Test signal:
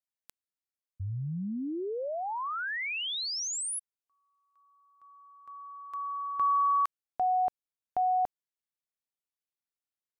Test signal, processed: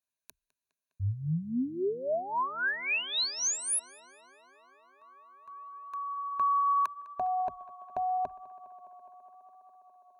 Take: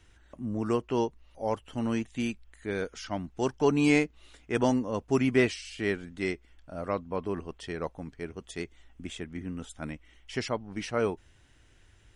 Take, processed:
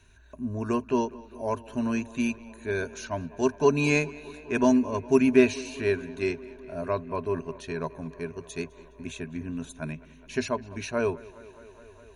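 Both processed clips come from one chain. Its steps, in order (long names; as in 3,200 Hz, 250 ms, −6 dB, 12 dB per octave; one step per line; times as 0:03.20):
EQ curve with evenly spaced ripples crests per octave 1.5, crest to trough 13 dB
tape delay 206 ms, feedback 88%, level −20 dB, low-pass 4,000 Hz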